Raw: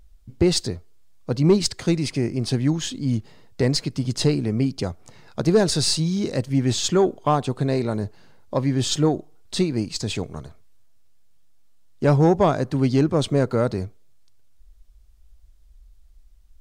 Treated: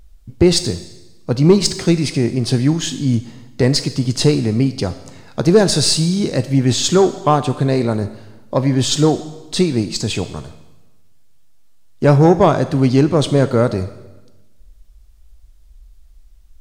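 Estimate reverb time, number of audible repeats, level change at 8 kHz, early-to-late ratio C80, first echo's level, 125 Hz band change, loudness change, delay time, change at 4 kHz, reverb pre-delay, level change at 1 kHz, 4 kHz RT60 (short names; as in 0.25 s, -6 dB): 1.1 s, none, +6.5 dB, 15.0 dB, none, +6.0 dB, +6.0 dB, none, +6.5 dB, 8 ms, +6.5 dB, 1.0 s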